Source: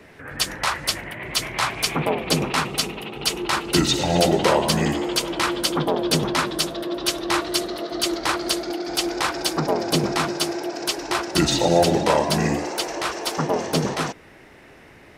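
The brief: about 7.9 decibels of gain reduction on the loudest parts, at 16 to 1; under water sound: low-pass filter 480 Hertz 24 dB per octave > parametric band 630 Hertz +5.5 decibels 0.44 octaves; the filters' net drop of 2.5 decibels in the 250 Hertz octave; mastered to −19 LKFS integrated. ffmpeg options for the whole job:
ffmpeg -i in.wav -af "equalizer=frequency=250:width_type=o:gain=-4,acompressor=threshold=-21dB:ratio=16,lowpass=frequency=480:width=0.5412,lowpass=frequency=480:width=1.3066,equalizer=frequency=630:width_type=o:width=0.44:gain=5.5,volume=13dB" out.wav

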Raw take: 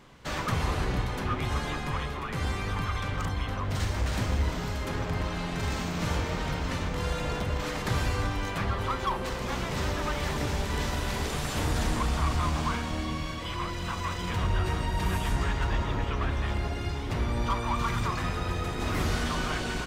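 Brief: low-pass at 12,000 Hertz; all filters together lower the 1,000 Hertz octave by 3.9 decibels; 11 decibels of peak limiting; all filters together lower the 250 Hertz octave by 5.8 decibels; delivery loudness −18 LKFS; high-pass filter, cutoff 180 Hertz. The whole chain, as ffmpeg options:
ffmpeg -i in.wav -af "highpass=180,lowpass=12000,equalizer=frequency=250:width_type=o:gain=-5.5,equalizer=frequency=1000:width_type=o:gain=-4.5,volume=22dB,alimiter=limit=-9.5dB:level=0:latency=1" out.wav

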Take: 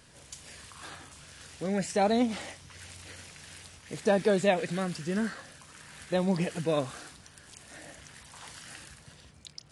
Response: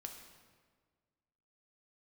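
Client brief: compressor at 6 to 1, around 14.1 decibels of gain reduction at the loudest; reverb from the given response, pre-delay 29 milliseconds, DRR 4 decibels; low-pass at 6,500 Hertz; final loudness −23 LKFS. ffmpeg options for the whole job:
-filter_complex "[0:a]lowpass=6500,acompressor=threshold=-36dB:ratio=6,asplit=2[link_01][link_02];[1:a]atrim=start_sample=2205,adelay=29[link_03];[link_02][link_03]afir=irnorm=-1:irlink=0,volume=0dB[link_04];[link_01][link_04]amix=inputs=2:normalize=0,volume=19dB"

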